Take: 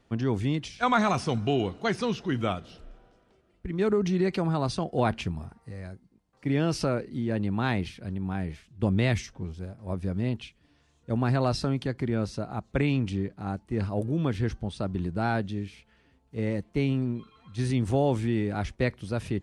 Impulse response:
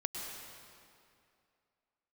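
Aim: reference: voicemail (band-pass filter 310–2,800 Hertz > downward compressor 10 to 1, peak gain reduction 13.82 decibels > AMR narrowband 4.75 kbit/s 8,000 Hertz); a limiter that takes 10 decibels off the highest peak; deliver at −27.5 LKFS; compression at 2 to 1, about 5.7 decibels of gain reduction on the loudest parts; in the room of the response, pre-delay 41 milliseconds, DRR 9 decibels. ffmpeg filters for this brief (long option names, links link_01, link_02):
-filter_complex "[0:a]acompressor=threshold=-30dB:ratio=2,alimiter=level_in=3dB:limit=-24dB:level=0:latency=1,volume=-3dB,asplit=2[link_01][link_02];[1:a]atrim=start_sample=2205,adelay=41[link_03];[link_02][link_03]afir=irnorm=-1:irlink=0,volume=-11dB[link_04];[link_01][link_04]amix=inputs=2:normalize=0,highpass=310,lowpass=2800,acompressor=threshold=-46dB:ratio=10,volume=25.5dB" -ar 8000 -c:a libopencore_amrnb -b:a 4750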